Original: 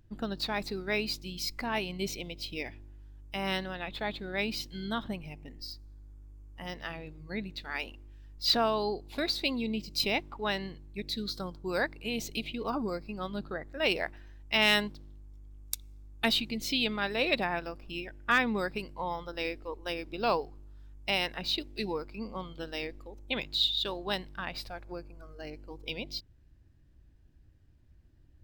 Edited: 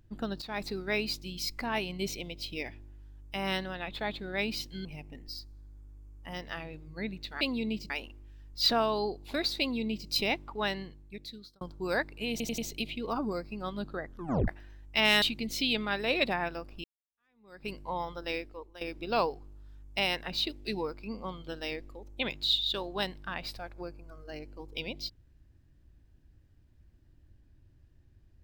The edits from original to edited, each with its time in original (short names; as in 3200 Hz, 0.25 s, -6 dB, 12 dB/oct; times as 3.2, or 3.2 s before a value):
0.42–0.72 fade in equal-power, from -15 dB
4.85–5.18 cut
9.44–9.93 copy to 7.74
10.52–11.45 fade out
12.15 stutter 0.09 s, 4 plays
13.64 tape stop 0.41 s
14.79–16.33 cut
17.95–18.8 fade in exponential
19.41–19.92 fade out, to -15.5 dB